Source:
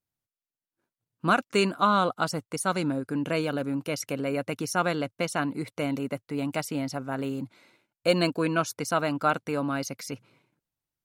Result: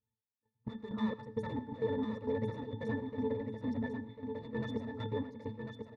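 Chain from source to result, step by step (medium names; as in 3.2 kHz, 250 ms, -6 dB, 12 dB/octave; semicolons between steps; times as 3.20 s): treble shelf 3.9 kHz -7.5 dB; hum notches 50/100/150/200/250/300 Hz; in parallel at +1.5 dB: compression, threshold -31 dBFS, peak gain reduction 13 dB; on the sum: saturation -22 dBFS, distortion -9 dB; granular stretch 0.54×, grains 24 ms; wavefolder -26 dBFS; pitch-class resonator A, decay 0.16 s; square tremolo 2.2 Hz, depth 65%, duty 50%; feedback delay 1047 ms, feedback 16%, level -6 dB; on a send at -16 dB: reverberation, pre-delay 76 ms; on the sum: trim +8.5 dB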